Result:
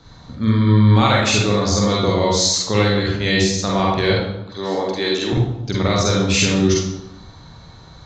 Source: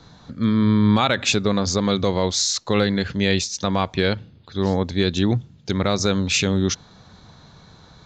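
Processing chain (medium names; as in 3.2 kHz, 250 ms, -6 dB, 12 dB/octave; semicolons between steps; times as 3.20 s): 4.15–5.33 s: high-pass 340 Hz 12 dB/octave; reverberation RT60 1.0 s, pre-delay 45 ms, DRR -4 dB; trim -1.5 dB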